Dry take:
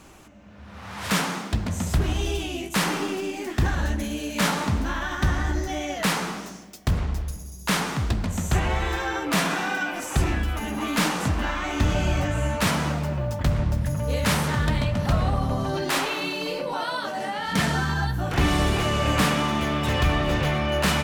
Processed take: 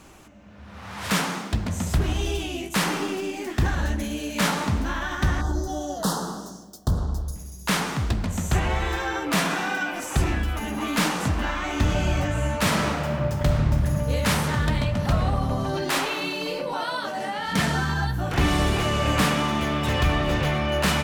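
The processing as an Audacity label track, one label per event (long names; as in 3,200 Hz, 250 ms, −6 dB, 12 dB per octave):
5.410000	7.360000	Butterworth band-reject 2,300 Hz, Q 0.85
12.580000	13.940000	thrown reverb, RT60 2 s, DRR 2.5 dB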